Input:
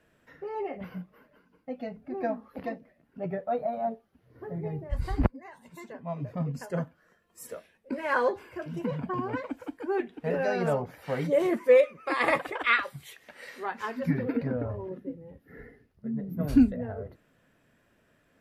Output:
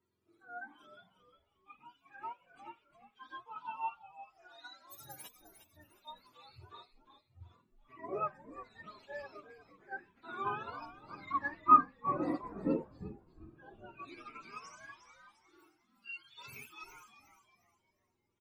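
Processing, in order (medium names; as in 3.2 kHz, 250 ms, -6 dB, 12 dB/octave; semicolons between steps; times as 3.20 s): spectrum inverted on a logarithmic axis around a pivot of 790 Hz; harmonic-percussive split percussive -18 dB; on a send: frequency-shifting echo 356 ms, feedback 35%, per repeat -110 Hz, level -9 dB; on the sum: upward expansion 1.5:1, over -42 dBFS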